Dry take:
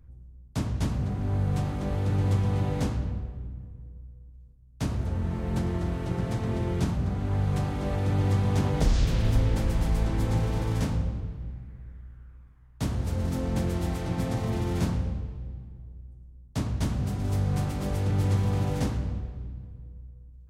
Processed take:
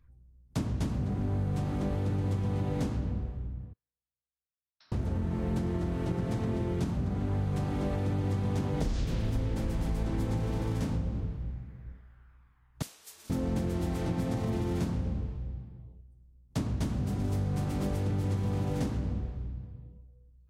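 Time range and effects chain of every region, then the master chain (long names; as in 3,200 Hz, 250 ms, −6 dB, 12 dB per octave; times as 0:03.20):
0:03.73–0:04.92: first difference + downward compressor 2 to 1, threshold −55 dBFS + Chebyshev low-pass with heavy ripple 5,600 Hz, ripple 9 dB
0:12.82–0:13.30: high-pass filter 250 Hz 6 dB per octave + first difference + frequency shifter −440 Hz
whole clip: noise reduction from a noise print of the clip's start 10 dB; dynamic equaliser 280 Hz, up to +5 dB, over −40 dBFS, Q 0.8; downward compressor, threshold −27 dBFS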